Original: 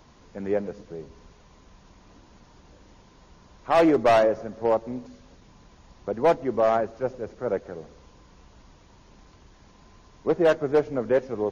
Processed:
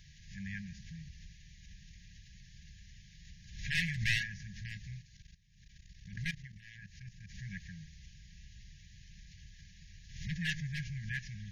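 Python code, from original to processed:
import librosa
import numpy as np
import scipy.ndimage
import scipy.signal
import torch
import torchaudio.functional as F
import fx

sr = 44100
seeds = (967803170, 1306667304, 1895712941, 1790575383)

y = fx.level_steps(x, sr, step_db=17, at=(5.02, 7.35))
y = fx.brickwall_bandstop(y, sr, low_hz=190.0, high_hz=1600.0)
y = fx.pre_swell(y, sr, db_per_s=75.0)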